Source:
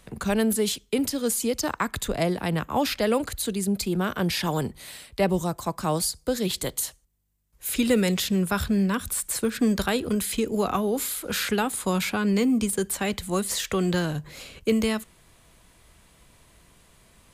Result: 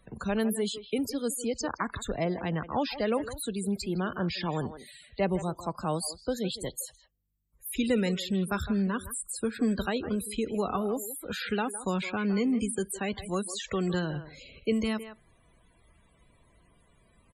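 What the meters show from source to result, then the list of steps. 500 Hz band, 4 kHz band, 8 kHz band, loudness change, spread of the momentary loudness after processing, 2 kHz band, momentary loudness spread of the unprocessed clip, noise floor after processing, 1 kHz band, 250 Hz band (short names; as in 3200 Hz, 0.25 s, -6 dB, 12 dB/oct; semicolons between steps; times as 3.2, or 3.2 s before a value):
-5.0 dB, -7.5 dB, -8.5 dB, -5.5 dB, 7 LU, -5.5 dB, 6 LU, -64 dBFS, -5.0 dB, -5.0 dB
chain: speakerphone echo 0.16 s, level -11 dB; loudest bins only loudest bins 64; gain -5 dB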